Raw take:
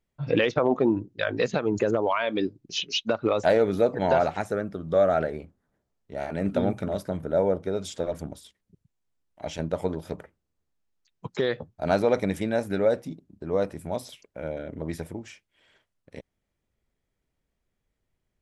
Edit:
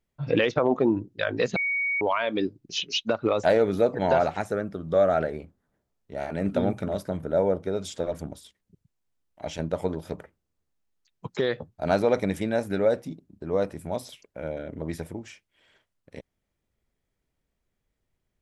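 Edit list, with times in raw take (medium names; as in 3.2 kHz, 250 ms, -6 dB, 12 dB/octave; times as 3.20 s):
1.56–2.01 s: bleep 2.24 kHz -23.5 dBFS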